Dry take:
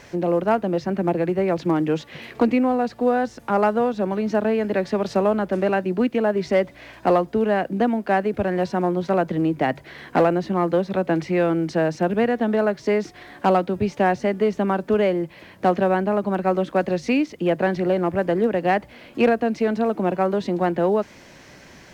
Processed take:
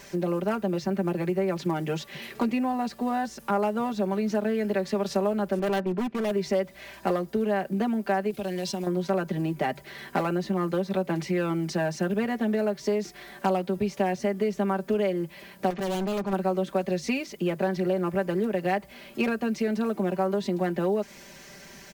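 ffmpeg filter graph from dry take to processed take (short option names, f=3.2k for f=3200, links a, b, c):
-filter_complex "[0:a]asettb=1/sr,asplit=3[a][b][c];[a]atrim=end=5.594[d];[b]atrim=start=5.59:end=6.31,asetpts=PTS-STARTPTS,afade=t=in:d=0.004:c=qsin,afade=t=out:st=0.716:d=0.004:c=qsin,agate=range=-33dB:threshold=-34dB:ratio=3:release=100:detection=peak,lowpass=2.1k,asoftclip=type=hard:threshold=-21dB[e];[c]atrim=start=6.306[f];[d][e]acrossfade=d=0.004:c1=hsin:c2=qsin[g];[g][f]acrossfade=d=0.004:c1=qsin:c2=hsin,asettb=1/sr,asplit=3[h][i][j];[h]atrim=end=8.304[k];[i]atrim=start=8.3:end=8.87,asetpts=PTS-STARTPTS,afade=t=in:d=0.004:c=qsin,afade=t=out:st=0.566:d=0.004:c=qsin,agate=range=-33dB:threshold=-34dB:ratio=3:release=100:detection=peak,acompressor=threshold=-26dB:ratio=5:attack=3.2:release=140:knee=1:detection=peak,highshelf=f=2.4k:t=q:w=1.5:g=8.5[l];[j]atrim=start=8.866[m];[k][l]acrossfade=d=0.004:c1=hsin:c2=qsin[n];[n][m]acrossfade=d=0.004:c1=qsin:c2=hsin,asettb=1/sr,asplit=3[o][p][q];[o]atrim=end=15.704[r];[p]atrim=start=15.7:end=16.33,asetpts=PTS-STARTPTS,afade=t=in:d=0.004:c=qsin,afade=t=out:st=0.626:d=0.004:c=qsin,lowpass=3.8k,asoftclip=type=hard:threshold=-25.5dB[s];[q]atrim=start=16.326[t];[r][s]acrossfade=d=0.004:c1=hsin:c2=qsin[u];[u][t]acrossfade=d=0.004:c1=qsin:c2=hsin,aemphasis=mode=production:type=50kf,aecho=1:1:5.1:0.76,acompressor=threshold=-19dB:ratio=2.5,volume=-5dB"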